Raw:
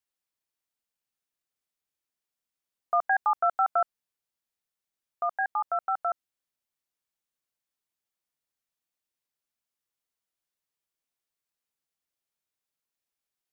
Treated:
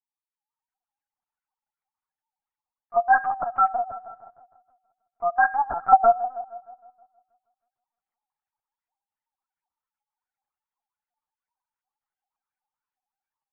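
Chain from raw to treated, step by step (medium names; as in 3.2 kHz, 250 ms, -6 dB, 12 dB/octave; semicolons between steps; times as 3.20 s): formants replaced by sine waves; high-order bell 550 Hz +10.5 dB 2.4 oct; in parallel at +2 dB: compression 16:1, threshold -19 dBFS, peak gain reduction 10.5 dB; on the sum: slow attack 197 ms; level rider gain up to 14 dB; LFO band-pass saw up 2.7 Hz 840–1800 Hz; feedback echo behind a low-pass 157 ms, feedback 50%, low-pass 890 Hz, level -8.5 dB; on a send at -16 dB: reverberation RT60 1.2 s, pre-delay 29 ms; on the sum: LPC vocoder at 8 kHz pitch kept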